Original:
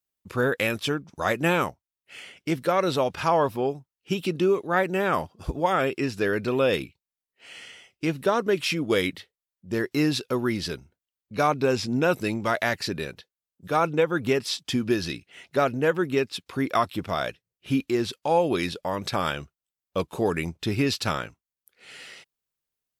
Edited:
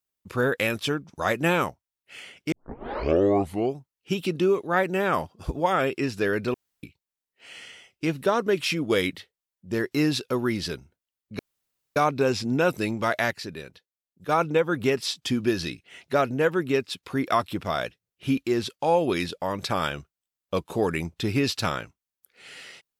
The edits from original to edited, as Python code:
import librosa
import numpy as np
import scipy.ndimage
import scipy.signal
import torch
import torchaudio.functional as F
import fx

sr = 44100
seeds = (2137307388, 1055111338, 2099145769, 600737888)

y = fx.edit(x, sr, fx.tape_start(start_s=2.52, length_s=1.23),
    fx.room_tone_fill(start_s=6.54, length_s=0.29),
    fx.insert_room_tone(at_s=11.39, length_s=0.57),
    fx.clip_gain(start_s=12.74, length_s=0.98, db=-6.5), tone=tone)